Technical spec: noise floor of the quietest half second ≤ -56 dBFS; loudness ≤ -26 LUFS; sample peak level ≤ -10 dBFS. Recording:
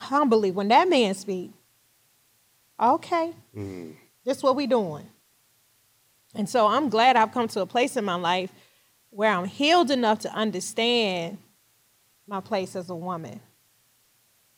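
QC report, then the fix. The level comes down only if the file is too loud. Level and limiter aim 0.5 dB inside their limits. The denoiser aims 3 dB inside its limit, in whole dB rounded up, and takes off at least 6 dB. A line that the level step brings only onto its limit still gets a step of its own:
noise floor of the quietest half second -64 dBFS: pass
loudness -24.0 LUFS: fail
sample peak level -8.0 dBFS: fail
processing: trim -2.5 dB

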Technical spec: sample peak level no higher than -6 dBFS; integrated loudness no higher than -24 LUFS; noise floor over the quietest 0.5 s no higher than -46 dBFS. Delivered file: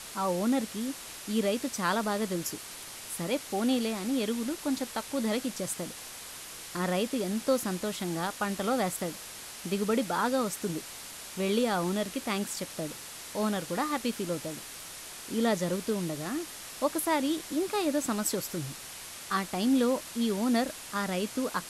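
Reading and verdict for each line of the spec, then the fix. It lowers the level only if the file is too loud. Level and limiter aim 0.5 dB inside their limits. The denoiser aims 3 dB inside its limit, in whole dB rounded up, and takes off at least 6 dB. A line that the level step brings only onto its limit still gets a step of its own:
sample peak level -14.5 dBFS: pass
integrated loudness -31.5 LUFS: pass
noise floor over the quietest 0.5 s -44 dBFS: fail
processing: noise reduction 6 dB, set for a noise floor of -44 dBFS

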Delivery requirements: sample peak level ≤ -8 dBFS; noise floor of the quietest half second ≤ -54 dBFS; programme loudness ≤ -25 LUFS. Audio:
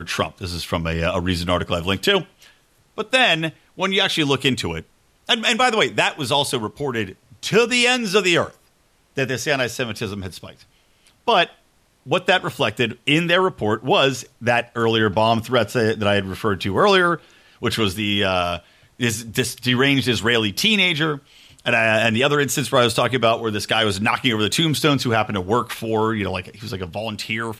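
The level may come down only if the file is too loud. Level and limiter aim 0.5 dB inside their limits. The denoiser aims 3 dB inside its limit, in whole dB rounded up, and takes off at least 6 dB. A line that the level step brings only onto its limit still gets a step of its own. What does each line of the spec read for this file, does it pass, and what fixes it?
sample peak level -5.0 dBFS: fail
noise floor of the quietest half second -60 dBFS: pass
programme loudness -19.5 LUFS: fail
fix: trim -6 dB

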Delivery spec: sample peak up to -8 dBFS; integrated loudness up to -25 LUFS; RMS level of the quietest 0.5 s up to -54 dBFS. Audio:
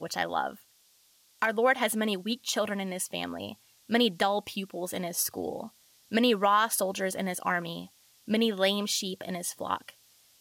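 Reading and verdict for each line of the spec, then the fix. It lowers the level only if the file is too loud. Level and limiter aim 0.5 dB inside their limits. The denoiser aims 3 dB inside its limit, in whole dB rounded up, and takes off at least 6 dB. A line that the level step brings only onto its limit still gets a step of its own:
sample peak -13.5 dBFS: pass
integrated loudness -29.0 LUFS: pass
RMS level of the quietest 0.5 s -64 dBFS: pass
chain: none needed

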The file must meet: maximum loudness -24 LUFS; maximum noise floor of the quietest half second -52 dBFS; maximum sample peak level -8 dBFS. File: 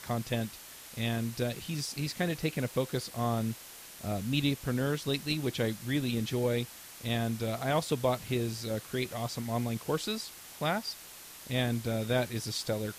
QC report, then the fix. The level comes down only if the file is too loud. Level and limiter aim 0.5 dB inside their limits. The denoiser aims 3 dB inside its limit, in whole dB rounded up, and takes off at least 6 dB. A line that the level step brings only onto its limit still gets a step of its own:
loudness -33.0 LUFS: pass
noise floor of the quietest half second -49 dBFS: fail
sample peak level -15.0 dBFS: pass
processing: noise reduction 6 dB, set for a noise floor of -49 dBFS

